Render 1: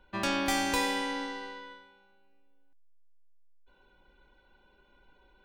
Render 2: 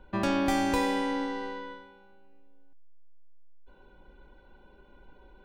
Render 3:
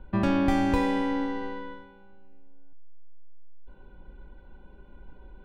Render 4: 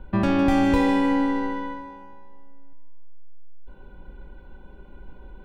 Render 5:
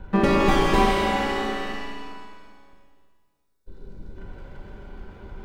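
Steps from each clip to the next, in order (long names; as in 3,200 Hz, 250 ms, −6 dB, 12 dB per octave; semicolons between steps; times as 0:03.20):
tilt shelving filter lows +6 dB, about 1,200 Hz; in parallel at +0.5 dB: downward compressor, threshold −36 dBFS, peak gain reduction 13 dB; on the sum: level −2 dB
bass and treble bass +9 dB, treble −9 dB
in parallel at −2.5 dB: brickwall limiter −20.5 dBFS, peak gain reduction 10.5 dB; on the sum: feedback echo with a high-pass in the loop 155 ms, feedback 56%, high-pass 260 Hz, level −10 dB
lower of the sound and its delayed copy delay 5.1 ms; gain on a spectral selection 0:03.13–0:04.16, 540–3,500 Hz −11 dB; reverb with rising layers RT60 1.4 s, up +7 semitones, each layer −8 dB, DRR 0.5 dB; level +3 dB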